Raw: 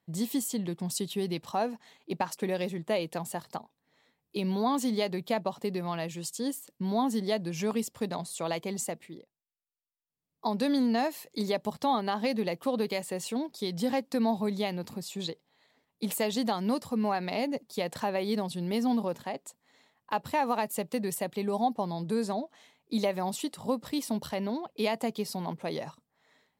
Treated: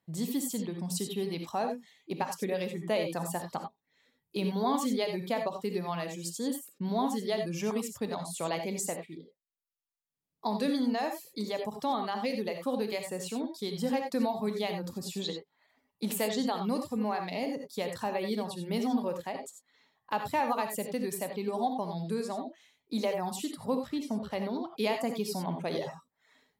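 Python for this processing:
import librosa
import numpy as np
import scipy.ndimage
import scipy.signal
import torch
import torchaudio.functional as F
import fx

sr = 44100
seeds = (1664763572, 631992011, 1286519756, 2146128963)

y = fx.lowpass(x, sr, hz=fx.line((23.85, 2700.0), (24.3, 1400.0)), slope=6, at=(23.85, 24.3), fade=0.02)
y = fx.dereverb_blind(y, sr, rt60_s=0.76)
y = fx.rider(y, sr, range_db=10, speed_s=2.0)
y = fx.rev_gated(y, sr, seeds[0], gate_ms=110, shape='rising', drr_db=5.0)
y = F.gain(torch.from_numpy(y), -2.5).numpy()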